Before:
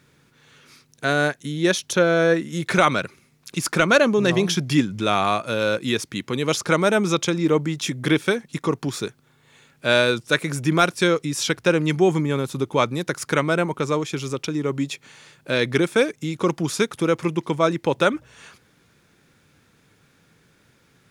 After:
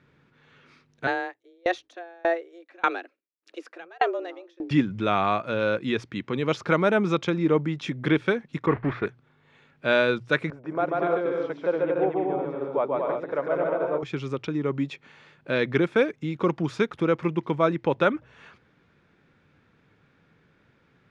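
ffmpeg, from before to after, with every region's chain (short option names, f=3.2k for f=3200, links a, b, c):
-filter_complex "[0:a]asettb=1/sr,asplit=3[a][b][c];[a]atrim=end=1.074[d];[b]atrim=start=1.07:end=4.71,asetpts=PTS-STARTPTS,afade=t=in:d=0.004:c=qsin,afade=t=out:st=3.636:d=0.004:c=qsin,agate=range=-33dB:threshold=-48dB:ratio=3:release=100:detection=peak,afreqshift=170,aeval=exprs='val(0)*pow(10,-33*if(lt(mod(1.7*n/s,1),2*abs(1.7)/1000),1-mod(1.7*n/s,1)/(2*abs(1.7)/1000),(mod(1.7*n/s,1)-2*abs(1.7)/1000)/(1-2*abs(1.7)/1000))/20)':c=same[e];[c]atrim=start=4.706[f];[d][e]acrossfade=d=0.004:c1=hsin:c2=qsin[g];[g][f]acrossfade=d=0.004:c1=qsin:c2=hsin,asettb=1/sr,asplit=3[h][i][j];[h]atrim=end=8.664[k];[i]atrim=start=8.66:end=9.06,asetpts=PTS-STARTPTS,afade=t=in:d=0.004:c=qsin,afade=t=out:st=0.396:d=0.004:c=qsin,aeval=exprs='val(0)+0.5*0.0531*sgn(val(0))':c=same,agate=range=-20dB:threshold=-27dB:ratio=16:release=100:detection=peak,lowpass=f=1.9k:t=q:w=2.6[l];[j]atrim=start=9.056[m];[k][l]acrossfade=d=0.004:c1=hsin:c2=qsin[n];[n][m]acrossfade=d=0.004:c1=qsin:c2=hsin,asettb=1/sr,asplit=3[o][p][q];[o]atrim=end=10.504[r];[p]atrim=start=10.5:end=14.03,asetpts=PTS-STARTPTS,afade=t=in:d=0.004:c=qsin,afade=t=out:st=3.526:d=0.004:c=qsin,bandpass=f=630:t=q:w=1.9,aecho=1:1:140|231|290.2|328.6|353.6:0.794|0.631|0.501|0.398|0.316,atrim=end_sample=155673[s];[q]atrim=start=14.026[t];[r][s]acrossfade=d=0.004:c1=hsin:c2=qsin[u];[u][t]acrossfade=d=0.004:c1=qsin:c2=hsin,lowpass=2.6k,bandreject=f=60:t=h:w=6,bandreject=f=120:t=h:w=6,volume=-2.5dB"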